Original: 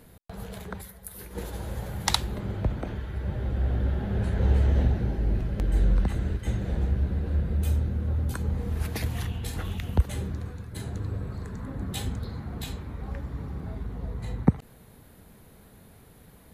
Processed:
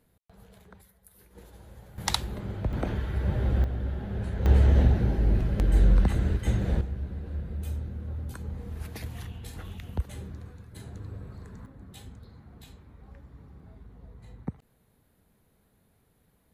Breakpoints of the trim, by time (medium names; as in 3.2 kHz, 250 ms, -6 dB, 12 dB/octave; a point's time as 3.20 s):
-15 dB
from 1.98 s -3 dB
from 2.73 s +3.5 dB
from 3.64 s -5 dB
from 4.46 s +2.5 dB
from 6.81 s -8 dB
from 11.66 s -14.5 dB